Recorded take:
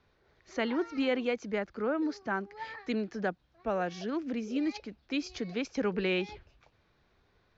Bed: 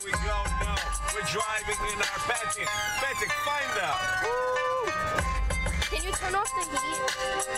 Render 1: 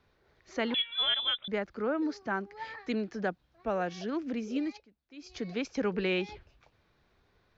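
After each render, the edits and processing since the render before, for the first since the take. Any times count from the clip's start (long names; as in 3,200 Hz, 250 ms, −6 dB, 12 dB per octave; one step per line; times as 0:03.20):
0:00.74–0:01.48: voice inversion scrambler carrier 3,700 Hz
0:04.57–0:05.44: duck −19.5 dB, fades 0.28 s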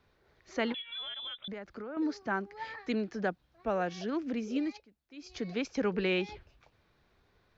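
0:00.72–0:01.97: downward compressor 16 to 1, threshold −37 dBFS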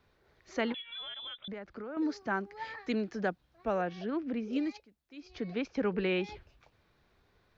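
0:00.61–0:01.84: high-frequency loss of the air 100 metres
0:03.81–0:04.53: high-frequency loss of the air 220 metres
0:05.20–0:06.24: high-frequency loss of the air 170 metres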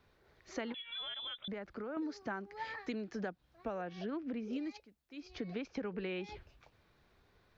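downward compressor 10 to 1, threshold −36 dBFS, peak gain reduction 10.5 dB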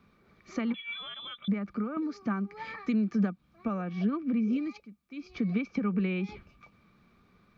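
hollow resonant body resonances 200/1,200/2,300 Hz, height 17 dB, ringing for 45 ms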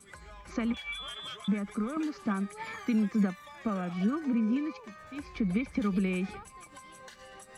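mix in bed −21 dB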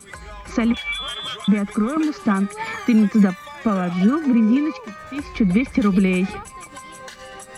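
level +12 dB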